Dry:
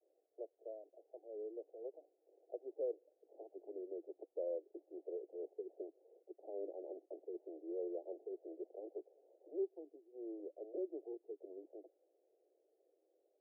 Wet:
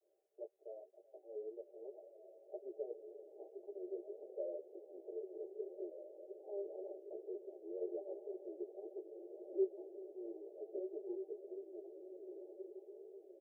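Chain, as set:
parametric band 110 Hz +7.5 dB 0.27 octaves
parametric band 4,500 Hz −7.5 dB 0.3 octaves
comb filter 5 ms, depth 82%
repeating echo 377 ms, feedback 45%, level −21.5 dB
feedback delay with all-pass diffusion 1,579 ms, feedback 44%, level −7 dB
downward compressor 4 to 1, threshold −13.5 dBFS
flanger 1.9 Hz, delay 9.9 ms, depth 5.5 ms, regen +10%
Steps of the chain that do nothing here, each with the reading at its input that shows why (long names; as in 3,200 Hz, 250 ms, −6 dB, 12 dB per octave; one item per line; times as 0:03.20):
parametric band 110 Hz: nothing at its input below 270 Hz
parametric band 4,500 Hz: nothing at its input above 810 Hz
downward compressor, threshold −13.5 dBFS: peak of its input −25.0 dBFS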